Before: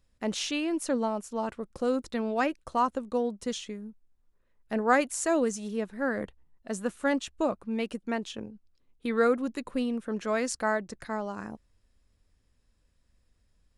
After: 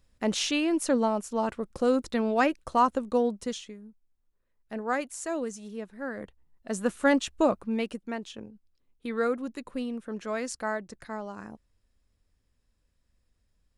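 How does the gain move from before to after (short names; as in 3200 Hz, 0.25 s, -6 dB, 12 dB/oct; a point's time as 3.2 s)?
3.31 s +3.5 dB
3.75 s -6 dB
6.17 s -6 dB
6.92 s +4.5 dB
7.59 s +4.5 dB
8.11 s -3.5 dB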